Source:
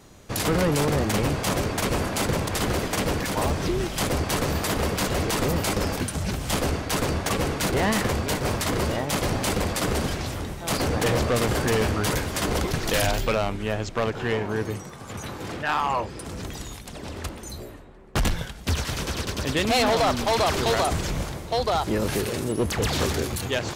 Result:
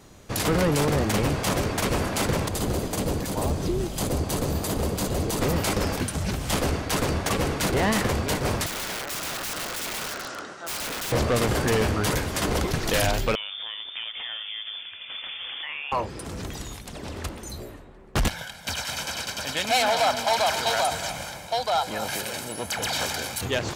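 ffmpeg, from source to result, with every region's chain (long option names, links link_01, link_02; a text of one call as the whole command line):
ffmpeg -i in.wav -filter_complex "[0:a]asettb=1/sr,asplit=3[link_01][link_02][link_03];[link_01]atrim=end=2.494[link_04];[link_02]atrim=start=2.49:end=5.41,asetpts=PTS-STARTPTS,afade=type=in:duration=0.004:curve=qsin,afade=type=out:start_time=2.916:duration=0.004:curve=qsin,equalizer=frequency=1900:width=0.66:gain=-9.5,bandreject=frequency=5500:width=15[link_05];[link_03]atrim=start=5.406[link_06];[link_04][link_05]acrossfade=duration=0.004:curve1=hsin:curve2=qsin[link_07];[link_07][link_06]acrossfade=duration=0.004:curve1=qsin:curve2=hsin,asettb=1/sr,asplit=3[link_08][link_09][link_10];[link_08]atrim=end=8.664[link_11];[link_09]atrim=start=8.66:end=11.12,asetpts=PTS-STARTPTS,afade=type=in:duration=0.004:curve=qsin,afade=type=out:start_time=2.456:duration=0.004:curve=qsin,highpass=420,equalizer=frequency=450:width_type=q:width=4:gain=-3,equalizer=frequency=880:width_type=q:width=4:gain=-5,equalizer=frequency=1400:width_type=q:width=4:gain=10,equalizer=frequency=2300:width_type=q:width=4:gain=-6,equalizer=frequency=3500:width_type=q:width=4:gain=-4,lowpass=frequency=7200:width=0.5412,lowpass=frequency=7200:width=1.3066,aeval=exprs='(mod(20*val(0)+1,2)-1)/20':channel_layout=same[link_12];[link_10]atrim=start=11.116[link_13];[link_11][link_12]acrossfade=duration=0.004:curve1=hsin:curve2=qsin[link_14];[link_14][link_13]acrossfade=duration=0.004:curve1=qsin:curve2=hsin,asettb=1/sr,asplit=3[link_15][link_16][link_17];[link_15]atrim=end=13.354[link_18];[link_16]atrim=start=13.35:end=15.92,asetpts=PTS-STARTPTS,afade=type=in:duration=0.004:curve=qsin,afade=type=out:start_time=2.566:duration=0.004:curve=qsin,acompressor=threshold=-30dB:ratio=10:attack=3.2:release=140:knee=1:detection=peak,lowpass=frequency=3100:width_type=q:width=0.5098,lowpass=frequency=3100:width_type=q:width=0.6013,lowpass=frequency=3100:width_type=q:width=0.9,lowpass=frequency=3100:width_type=q:width=2.563,afreqshift=-3600[link_19];[link_17]atrim=start=15.916[link_20];[link_18][link_19]acrossfade=duration=0.004:curve1=hsin:curve2=qsin[link_21];[link_21][link_20]acrossfade=duration=0.004:curve1=qsin:curve2=hsin,asettb=1/sr,asplit=3[link_22][link_23][link_24];[link_22]atrim=end=18.284[link_25];[link_23]atrim=start=18.28:end=23.41,asetpts=PTS-STARTPTS,afade=type=in:duration=0.004:curve=qsin,afade=type=out:start_time=5.126:duration=0.004:curve=qsin,highpass=frequency=700:poles=1,aecho=1:1:1.3:0.62,atrim=end_sample=226233,aecho=1:1:239|261:0.224|0.15,atrim=end_sample=226233[link_26];[link_24]atrim=start=23.406[link_27];[link_25][link_26]acrossfade=duration=0.004:curve1=hsin:curve2=qsin[link_28];[link_28][link_27]acrossfade=duration=0.004:curve1=qsin:curve2=hsin" out.wav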